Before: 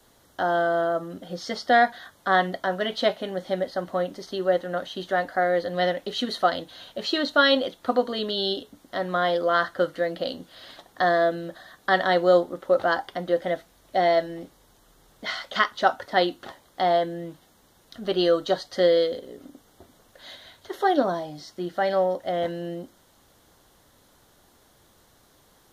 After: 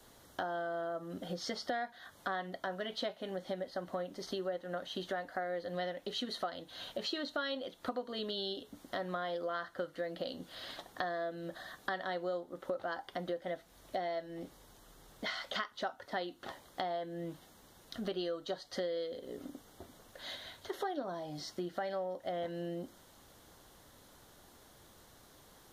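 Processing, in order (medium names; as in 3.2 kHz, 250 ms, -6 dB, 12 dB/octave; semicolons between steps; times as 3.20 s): compression 6:1, threshold -35 dBFS, peak gain reduction 20 dB; trim -1 dB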